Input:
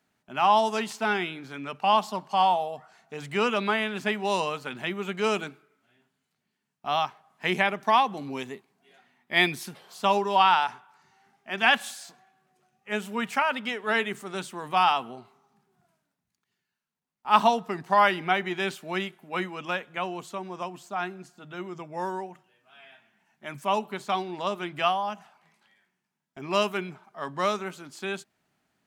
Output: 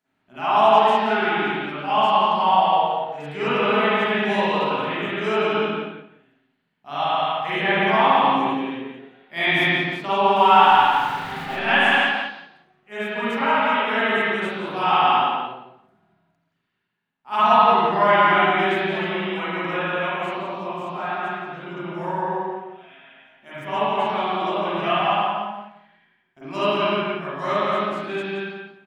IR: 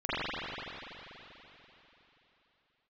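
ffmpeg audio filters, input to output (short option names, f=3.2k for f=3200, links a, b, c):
-filter_complex "[0:a]asettb=1/sr,asplit=3[a][b][c];[a]atrim=end=10.364[d];[b]atrim=start=10.36:end=11.59,asetpts=PTS-STARTPTS,afade=t=in:d=0.004:c=qsin,afade=t=out:st=1.226:d=0.004:c=qsin,aeval=exprs='val(0)+0.5*0.0282*sgn(val(0))':c=same[e];[c]atrim=start=11.586[f];[d][e]acrossfade=d=0.004:c1=hsin:c2=qsin[g];[g][f]acrossfade=d=0.004:c1=qsin:c2=hsin,asplit=2[h][i];[i]adelay=174,lowpass=f=3k:p=1,volume=-3.5dB,asplit=2[j][k];[k]adelay=174,lowpass=f=3k:p=1,volume=0.21,asplit=2[l][m];[m]adelay=174,lowpass=f=3k:p=1,volume=0.21[n];[h][j][l][n]amix=inputs=4:normalize=0[o];[1:a]atrim=start_sample=2205,afade=t=out:st=0.44:d=0.01,atrim=end_sample=19845[p];[o][p]afir=irnorm=-1:irlink=0,volume=-6dB"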